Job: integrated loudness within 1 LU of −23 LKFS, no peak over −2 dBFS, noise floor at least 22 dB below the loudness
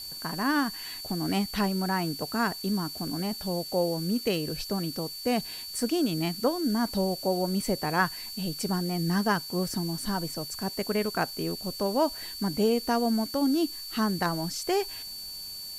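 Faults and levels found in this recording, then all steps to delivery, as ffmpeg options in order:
interfering tone 4,500 Hz; level of the tone −38 dBFS; background noise floor −40 dBFS; target noise floor −51 dBFS; integrated loudness −29.0 LKFS; sample peak −11.0 dBFS; target loudness −23.0 LKFS
→ -af "bandreject=frequency=4500:width=30"
-af "afftdn=noise_reduction=11:noise_floor=-40"
-af "volume=6dB"

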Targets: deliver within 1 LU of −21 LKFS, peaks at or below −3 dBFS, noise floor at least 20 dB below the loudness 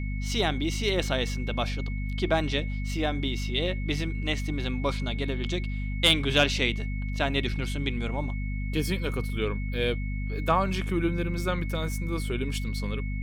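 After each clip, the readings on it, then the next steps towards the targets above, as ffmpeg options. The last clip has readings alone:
mains hum 50 Hz; hum harmonics up to 250 Hz; level of the hum −28 dBFS; interfering tone 2,200 Hz; level of the tone −42 dBFS; integrated loudness −28.5 LKFS; sample peak −9.5 dBFS; target loudness −21.0 LKFS
→ -af "bandreject=frequency=50:width_type=h:width=4,bandreject=frequency=100:width_type=h:width=4,bandreject=frequency=150:width_type=h:width=4,bandreject=frequency=200:width_type=h:width=4,bandreject=frequency=250:width_type=h:width=4"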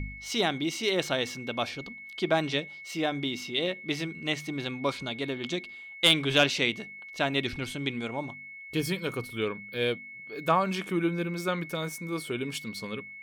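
mains hum none found; interfering tone 2,200 Hz; level of the tone −42 dBFS
→ -af "bandreject=frequency=2200:width=30"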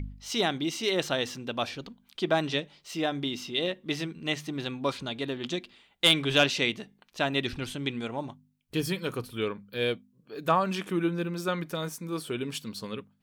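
interfering tone none found; integrated loudness −30.0 LKFS; sample peak −10.0 dBFS; target loudness −21.0 LKFS
→ -af "volume=9dB,alimiter=limit=-3dB:level=0:latency=1"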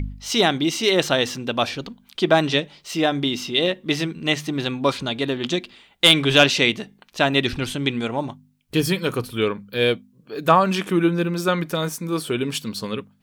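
integrated loudness −21.0 LKFS; sample peak −3.0 dBFS; background noise floor −58 dBFS

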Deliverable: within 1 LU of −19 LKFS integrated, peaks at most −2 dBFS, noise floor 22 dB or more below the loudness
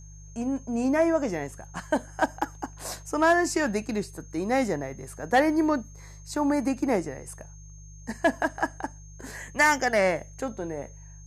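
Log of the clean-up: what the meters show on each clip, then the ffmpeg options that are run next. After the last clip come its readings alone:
mains hum 50 Hz; hum harmonics up to 150 Hz; level of the hum −43 dBFS; interfering tone 6,400 Hz; level of the tone −52 dBFS; integrated loudness −26.5 LKFS; sample peak −12.5 dBFS; target loudness −19.0 LKFS
→ -af "bandreject=frequency=50:width_type=h:width=4,bandreject=frequency=100:width_type=h:width=4,bandreject=frequency=150:width_type=h:width=4"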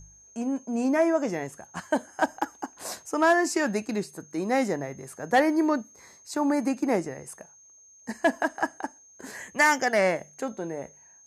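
mains hum none found; interfering tone 6,400 Hz; level of the tone −52 dBFS
→ -af "bandreject=frequency=6400:width=30"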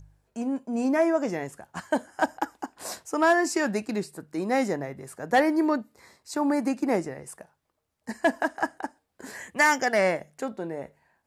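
interfering tone none found; integrated loudness −26.5 LKFS; sample peak −12.5 dBFS; target loudness −19.0 LKFS
→ -af "volume=7.5dB"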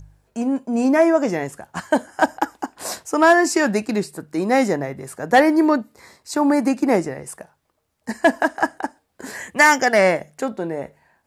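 integrated loudness −19.0 LKFS; sample peak −5.0 dBFS; background noise floor −70 dBFS

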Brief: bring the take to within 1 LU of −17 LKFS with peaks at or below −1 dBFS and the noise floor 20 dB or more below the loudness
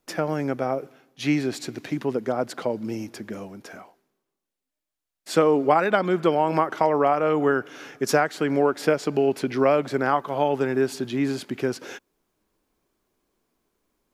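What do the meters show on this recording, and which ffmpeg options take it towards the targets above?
integrated loudness −23.5 LKFS; sample peak −4.5 dBFS; target loudness −17.0 LKFS
→ -af "volume=6.5dB,alimiter=limit=-1dB:level=0:latency=1"

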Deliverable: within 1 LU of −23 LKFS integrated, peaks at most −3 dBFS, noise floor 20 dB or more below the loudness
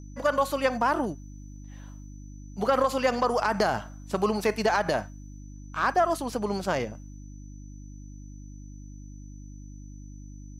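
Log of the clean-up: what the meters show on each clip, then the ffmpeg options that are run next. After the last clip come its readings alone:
mains hum 50 Hz; hum harmonics up to 300 Hz; level of the hum −41 dBFS; interfering tone 6,000 Hz; level of the tone −58 dBFS; integrated loudness −27.0 LKFS; sample peak −12.5 dBFS; target loudness −23.0 LKFS
→ -af "bandreject=frequency=50:width_type=h:width=4,bandreject=frequency=100:width_type=h:width=4,bandreject=frequency=150:width_type=h:width=4,bandreject=frequency=200:width_type=h:width=4,bandreject=frequency=250:width_type=h:width=4,bandreject=frequency=300:width_type=h:width=4"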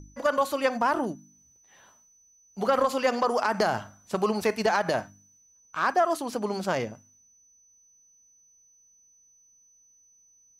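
mains hum none found; interfering tone 6,000 Hz; level of the tone −58 dBFS
→ -af "bandreject=frequency=6000:width=30"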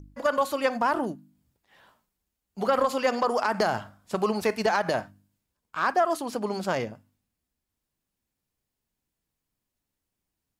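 interfering tone none found; integrated loudness −27.0 LKFS; sample peak −12.5 dBFS; target loudness −23.0 LKFS
→ -af "volume=4dB"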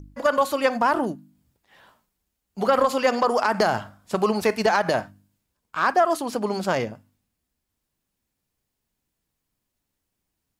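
integrated loudness −23.0 LKFS; sample peak −8.5 dBFS; background noise floor −81 dBFS

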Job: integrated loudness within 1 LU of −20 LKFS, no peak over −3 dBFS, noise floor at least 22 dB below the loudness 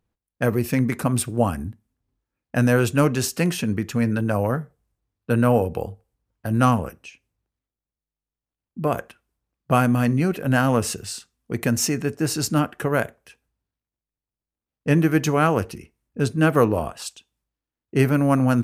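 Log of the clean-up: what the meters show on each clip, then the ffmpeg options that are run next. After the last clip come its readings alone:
integrated loudness −22.0 LKFS; sample peak −3.5 dBFS; target loudness −20.0 LKFS
→ -af "volume=2dB,alimiter=limit=-3dB:level=0:latency=1"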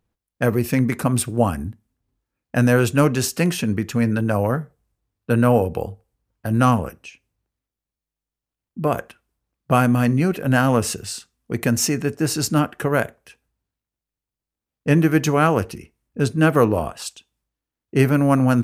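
integrated loudness −20.0 LKFS; sample peak −3.0 dBFS; background noise floor −88 dBFS

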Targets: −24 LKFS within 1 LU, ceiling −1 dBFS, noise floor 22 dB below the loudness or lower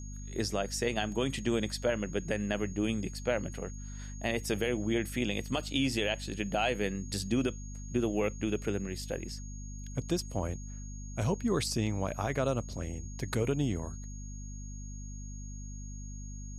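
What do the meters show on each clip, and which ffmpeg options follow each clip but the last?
mains hum 50 Hz; hum harmonics up to 250 Hz; level of the hum −40 dBFS; interfering tone 6,600 Hz; level of the tone −50 dBFS; integrated loudness −33.5 LKFS; sample peak −16.5 dBFS; target loudness −24.0 LKFS
→ -af "bandreject=frequency=50:width_type=h:width=6,bandreject=frequency=100:width_type=h:width=6,bandreject=frequency=150:width_type=h:width=6,bandreject=frequency=200:width_type=h:width=6,bandreject=frequency=250:width_type=h:width=6"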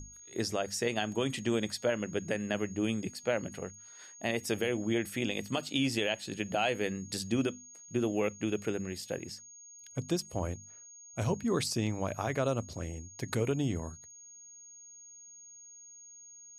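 mains hum none found; interfering tone 6,600 Hz; level of the tone −50 dBFS
→ -af "bandreject=frequency=6600:width=30"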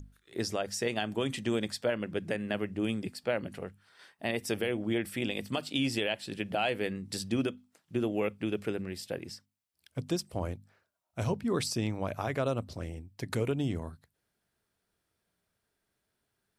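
interfering tone none found; integrated loudness −33.5 LKFS; sample peak −17.0 dBFS; target loudness −24.0 LKFS
→ -af "volume=9.5dB"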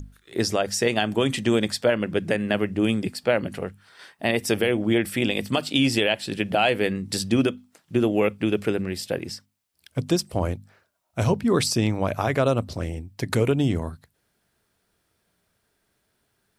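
integrated loudness −24.0 LKFS; sample peak −7.5 dBFS; background noise floor −72 dBFS

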